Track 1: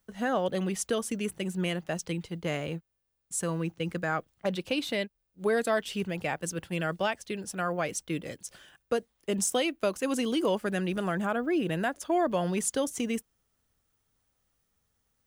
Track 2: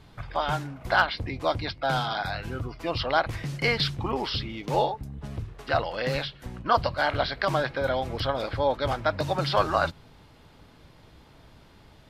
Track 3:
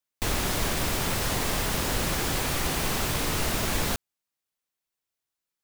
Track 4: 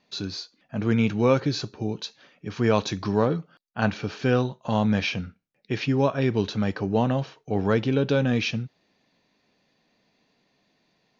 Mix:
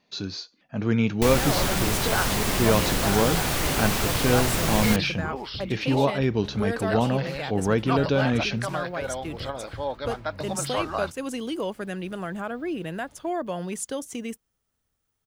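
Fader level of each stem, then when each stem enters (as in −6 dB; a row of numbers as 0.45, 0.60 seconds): −2.5, −5.5, +2.0, −0.5 decibels; 1.15, 1.20, 1.00, 0.00 seconds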